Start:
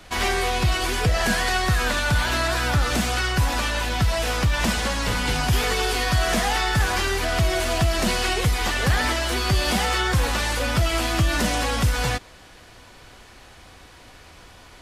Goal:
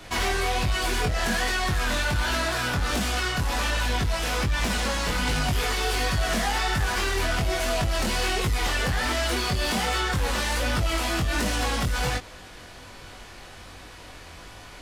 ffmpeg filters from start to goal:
-af "acompressor=threshold=-22dB:ratio=6,aeval=exprs='0.2*(cos(1*acos(clip(val(0)/0.2,-1,1)))-cos(1*PI/2))+0.0398*(cos(5*acos(clip(val(0)/0.2,-1,1)))-cos(5*PI/2))':c=same,flanger=delay=19.5:depth=4.2:speed=1.3"

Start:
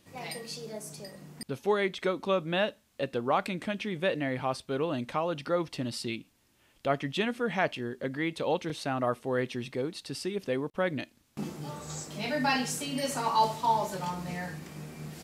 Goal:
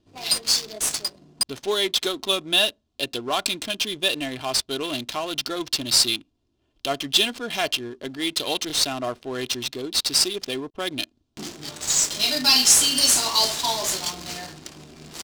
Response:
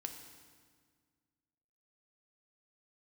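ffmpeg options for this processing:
-af "aecho=1:1:2.9:0.55,aexciter=amount=6.5:drive=9:freq=3k,adynamicsmooth=sensitivity=6:basefreq=600"

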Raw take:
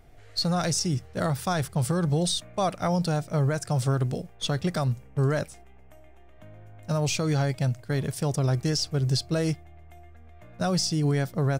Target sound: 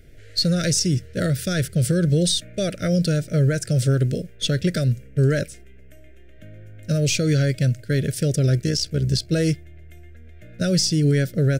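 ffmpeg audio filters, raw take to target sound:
-filter_complex "[0:a]asplit=3[a][b][c];[a]afade=t=out:st=8.57:d=0.02[d];[b]tremolo=f=62:d=0.571,afade=t=in:st=8.57:d=0.02,afade=t=out:st=9.28:d=0.02[e];[c]afade=t=in:st=9.28:d=0.02[f];[d][e][f]amix=inputs=3:normalize=0,asuperstop=centerf=930:order=8:qfactor=1.1,volume=6dB"

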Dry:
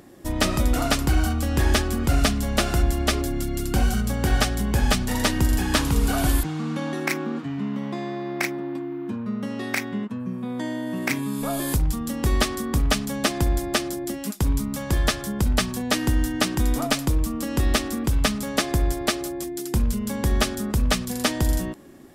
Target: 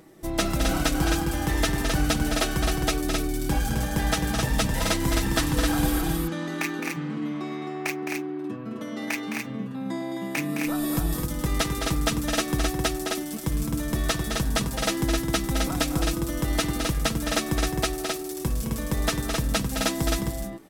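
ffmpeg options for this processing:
-af "aecho=1:1:6.6:0.57,asetrate=47187,aresample=44100,aecho=1:1:212.8|262.4:0.447|0.631,volume=-4.5dB"

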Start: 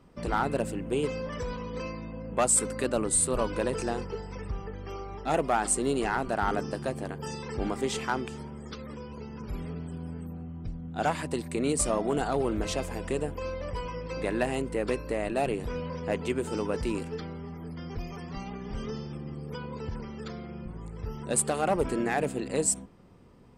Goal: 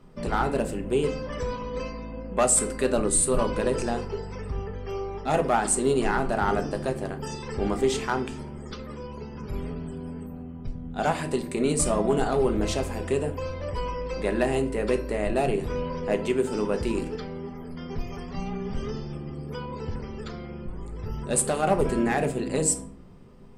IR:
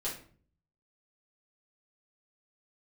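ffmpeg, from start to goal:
-filter_complex "[0:a]asplit=2[a][b];[1:a]atrim=start_sample=2205,lowshelf=f=210:g=9[c];[b][c]afir=irnorm=-1:irlink=0,volume=-7.5dB[d];[a][d]amix=inputs=2:normalize=0"

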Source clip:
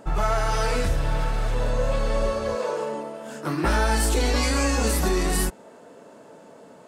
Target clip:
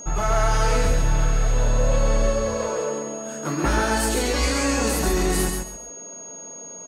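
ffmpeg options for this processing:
-af "aecho=1:1:136|272|408:0.596|0.143|0.0343,aeval=exprs='val(0)+0.0158*sin(2*PI*6600*n/s)':c=same"

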